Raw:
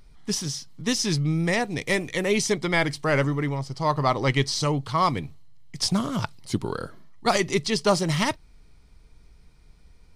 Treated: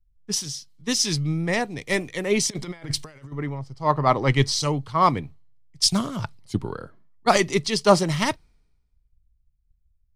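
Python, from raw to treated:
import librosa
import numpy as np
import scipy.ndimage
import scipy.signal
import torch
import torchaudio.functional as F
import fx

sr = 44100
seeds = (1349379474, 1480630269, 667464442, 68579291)

y = fx.over_compress(x, sr, threshold_db=-29.0, ratio=-0.5, at=(2.5, 3.32))
y = fx.band_widen(y, sr, depth_pct=100)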